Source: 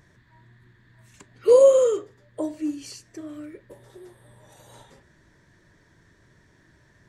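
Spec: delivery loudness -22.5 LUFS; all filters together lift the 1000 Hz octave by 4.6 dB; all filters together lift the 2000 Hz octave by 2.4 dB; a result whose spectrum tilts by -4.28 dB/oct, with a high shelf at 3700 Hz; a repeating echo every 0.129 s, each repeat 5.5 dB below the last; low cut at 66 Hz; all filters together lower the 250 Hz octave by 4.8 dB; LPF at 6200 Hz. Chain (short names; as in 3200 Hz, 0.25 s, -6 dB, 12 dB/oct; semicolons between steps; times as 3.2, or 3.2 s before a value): HPF 66 Hz; LPF 6200 Hz; bell 250 Hz -7 dB; bell 1000 Hz +5 dB; bell 2000 Hz +3.5 dB; high shelf 3700 Hz -8 dB; feedback echo 0.129 s, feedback 53%, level -5.5 dB; gain -3.5 dB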